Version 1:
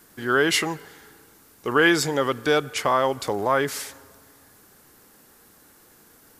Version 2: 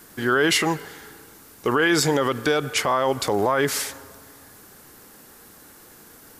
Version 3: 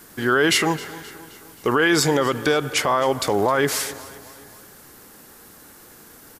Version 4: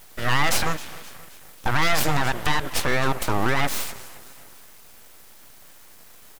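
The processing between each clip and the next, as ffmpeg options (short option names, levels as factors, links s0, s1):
-af "alimiter=limit=0.15:level=0:latency=1:release=50,volume=2"
-af "aecho=1:1:263|526|789|1052:0.112|0.0595|0.0315|0.0167,volume=1.19"
-af "aeval=exprs='abs(val(0))':c=same"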